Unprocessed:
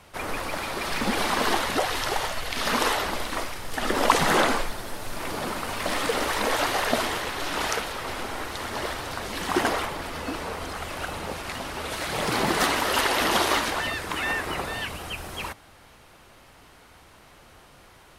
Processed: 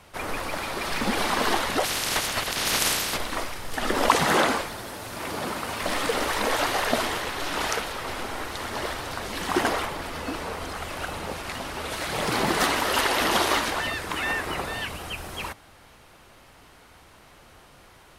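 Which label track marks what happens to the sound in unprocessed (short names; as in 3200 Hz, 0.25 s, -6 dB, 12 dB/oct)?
1.830000	3.160000	spectral limiter ceiling under each frame's peak by 23 dB
4.080000	5.810000	HPF 56 Hz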